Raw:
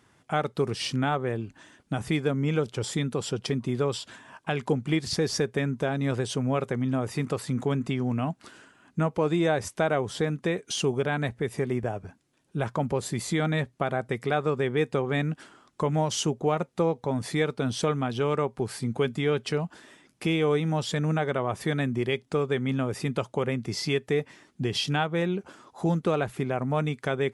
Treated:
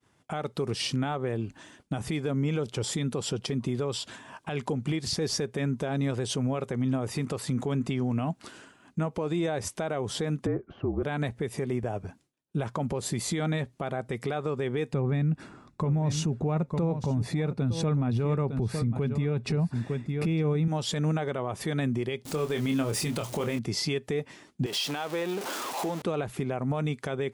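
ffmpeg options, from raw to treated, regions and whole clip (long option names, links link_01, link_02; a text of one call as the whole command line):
ffmpeg -i in.wav -filter_complex "[0:a]asettb=1/sr,asplit=3[link_01][link_02][link_03];[link_01]atrim=end=10.464[link_04];[link_02]atrim=start=10.46:end=11.03,asetpts=PTS-STARTPTS,afade=type=in:duration=0.004:curve=qsin,afade=type=out:start_time=0.566:duration=0.004:curve=qsin,lowpass=frequency=1400:width=0.5412,lowpass=frequency=1400:width=1.3066,bandreject=frequency=990:width=8.7,afreqshift=-47[link_05];[link_03]atrim=start=11.026[link_06];[link_04][link_05]acrossfade=duration=0.004:curve1=hsin:curve2=qsin[link_07];[link_07][link_06]acrossfade=duration=0.004:curve1=qsin:curve2=hsin,asettb=1/sr,asplit=3[link_08][link_09][link_10];[link_08]atrim=end=14.934[link_11];[link_09]atrim=start=14.93:end=20.68,asetpts=PTS-STARTPTS,afade=type=in:duration=0.004:curve=qsin,afade=type=out:start_time=5.746:duration=0.004:curve=qsin,asuperstop=centerf=3100:order=4:qfactor=7,bass=frequency=250:gain=13,treble=frequency=4000:gain=-7,aecho=1:1:906:0.188,atrim=end_sample=253575[link_12];[link_10]atrim=start=20.676[link_13];[link_11][link_12]acrossfade=duration=0.004:curve1=hsin:curve2=qsin[link_14];[link_14][link_13]acrossfade=duration=0.004:curve1=qsin:curve2=hsin,asettb=1/sr,asplit=3[link_15][link_16][link_17];[link_15]atrim=end=22.254[link_18];[link_16]atrim=start=22.25:end=23.59,asetpts=PTS-STARTPTS,afade=type=in:duration=0.004:curve=qsin,afade=type=out:start_time=1.336:duration=0.004:curve=qsin,aeval=exprs='val(0)+0.5*0.00944*sgn(val(0))':channel_layout=same,highshelf=frequency=3500:gain=8.5,asplit=2[link_19][link_20];[link_20]adelay=26,volume=-7.5dB[link_21];[link_19][link_21]amix=inputs=2:normalize=0,atrim=end_sample=59094[link_22];[link_17]atrim=start=23.586[link_23];[link_18][link_22]acrossfade=duration=0.004:curve1=hsin:curve2=qsin[link_24];[link_24][link_23]acrossfade=duration=0.004:curve1=qsin:curve2=hsin,asettb=1/sr,asplit=3[link_25][link_26][link_27];[link_25]atrim=end=24.664[link_28];[link_26]atrim=start=24.66:end=26.02,asetpts=PTS-STARTPTS,afade=type=in:duration=0.004:curve=qsin,afade=type=out:start_time=1.356:duration=0.004:curve=qsin,aeval=exprs='val(0)+0.5*0.0266*sgn(val(0))':channel_layout=same,highpass=360,acompressor=threshold=-30dB:ratio=4:attack=3.2:release=140:knee=1:detection=peak[link_29];[link_27]atrim=start=26.016[link_30];[link_28][link_29]acrossfade=duration=0.004:curve1=hsin:curve2=qsin[link_31];[link_31][link_30]acrossfade=duration=0.004:curve1=qsin:curve2=hsin,agate=range=-33dB:threshold=-55dB:ratio=3:detection=peak,equalizer=frequency=1600:width=1.5:gain=-3,alimiter=limit=-23.5dB:level=0:latency=1:release=123,volume=3.5dB" out.wav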